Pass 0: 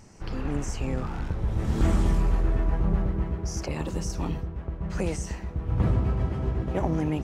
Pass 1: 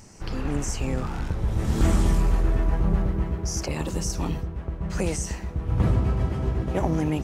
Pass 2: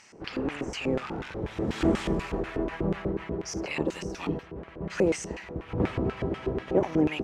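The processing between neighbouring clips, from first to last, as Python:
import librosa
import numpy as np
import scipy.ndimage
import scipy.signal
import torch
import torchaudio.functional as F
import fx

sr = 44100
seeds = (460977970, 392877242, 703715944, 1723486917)

y1 = fx.high_shelf(x, sr, hz=4900.0, db=8.0)
y1 = y1 * 10.0 ** (2.0 / 20.0)
y2 = fx.filter_lfo_bandpass(y1, sr, shape='square', hz=4.1, low_hz=400.0, high_hz=2400.0, q=1.5)
y2 = y2 * 10.0 ** (7.0 / 20.0)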